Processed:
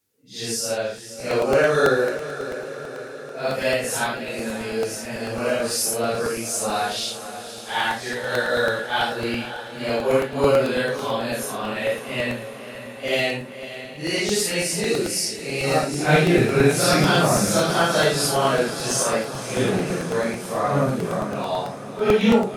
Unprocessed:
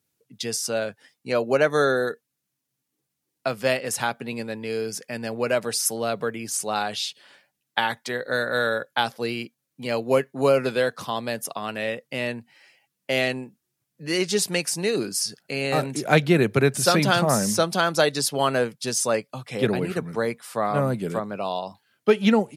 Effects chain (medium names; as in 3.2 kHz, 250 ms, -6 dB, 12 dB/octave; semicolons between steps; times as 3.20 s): phase randomisation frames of 200 ms; echo that smears into a reverb 546 ms, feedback 63%, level -12 dB; crackling interface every 0.11 s, samples 64, repeat, from 0.98 s; trim +2 dB